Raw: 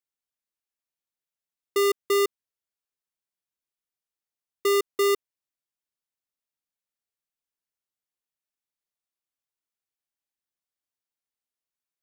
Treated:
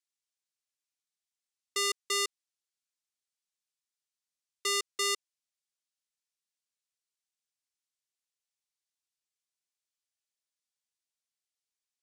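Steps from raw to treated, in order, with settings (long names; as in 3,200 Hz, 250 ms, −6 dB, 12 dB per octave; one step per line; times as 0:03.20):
meter weighting curve ITU-R 468
level −8.5 dB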